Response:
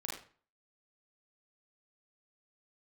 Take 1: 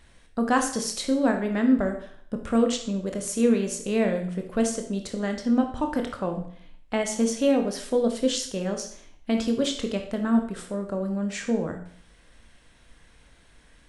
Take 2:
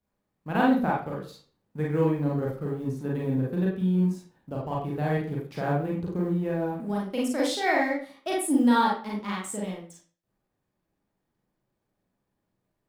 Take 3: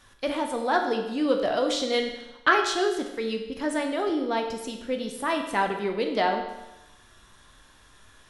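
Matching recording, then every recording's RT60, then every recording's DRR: 2; 0.60, 0.40, 1.0 s; 4.0, -4.0, 3.0 dB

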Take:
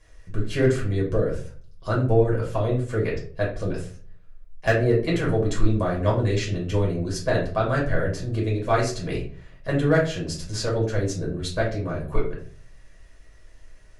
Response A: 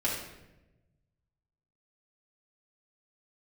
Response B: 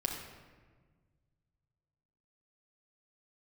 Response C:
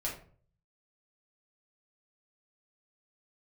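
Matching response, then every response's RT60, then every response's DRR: C; 1.0, 1.5, 0.45 s; -6.0, -1.0, -4.5 dB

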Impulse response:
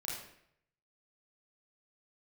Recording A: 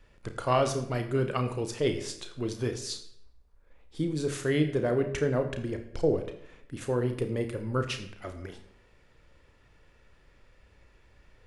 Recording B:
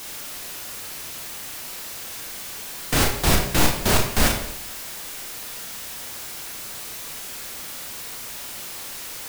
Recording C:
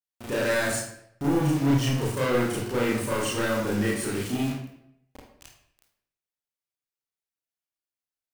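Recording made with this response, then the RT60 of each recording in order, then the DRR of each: C; 0.70, 0.70, 0.70 s; 6.0, 1.0, -6.0 dB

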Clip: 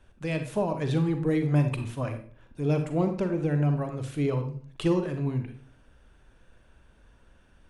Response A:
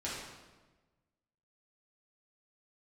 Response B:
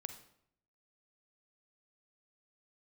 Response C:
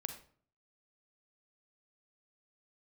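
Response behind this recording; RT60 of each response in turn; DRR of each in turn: C; 1.2, 0.70, 0.50 s; -8.5, 8.0, 6.5 dB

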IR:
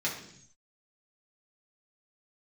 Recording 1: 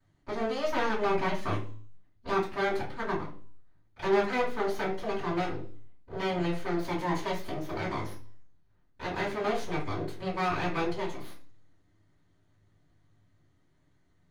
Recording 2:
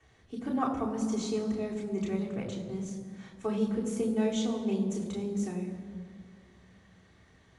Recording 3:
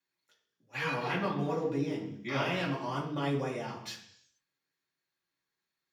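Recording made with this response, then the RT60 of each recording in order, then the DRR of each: 3; 0.45, 2.0, 0.65 s; -14.5, -5.5, -6.0 dB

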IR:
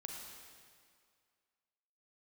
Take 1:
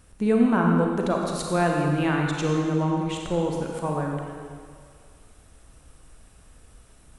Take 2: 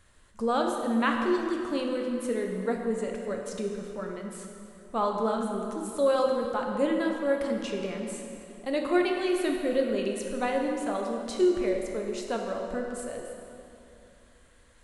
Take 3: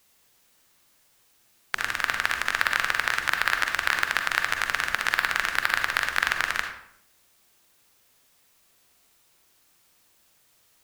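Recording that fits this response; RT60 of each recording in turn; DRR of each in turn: 1; 2.1, 2.7, 0.70 s; 0.0, 1.0, 4.0 dB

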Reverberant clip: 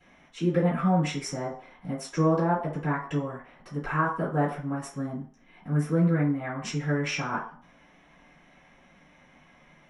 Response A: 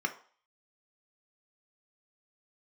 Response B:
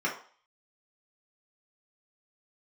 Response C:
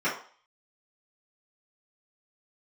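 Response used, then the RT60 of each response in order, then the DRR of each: C; 0.45, 0.45, 0.45 s; 5.0, -4.5, -12.0 dB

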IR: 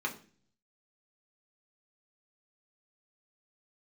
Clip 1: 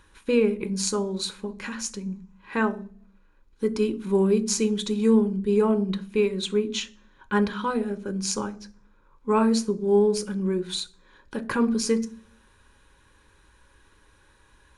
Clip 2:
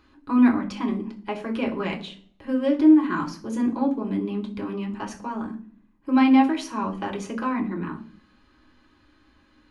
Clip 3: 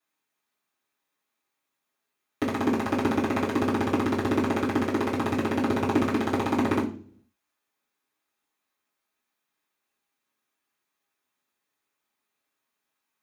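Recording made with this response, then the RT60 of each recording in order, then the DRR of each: 2; 0.40, 0.40, 0.40 s; 8.5, -0.5, -10.5 dB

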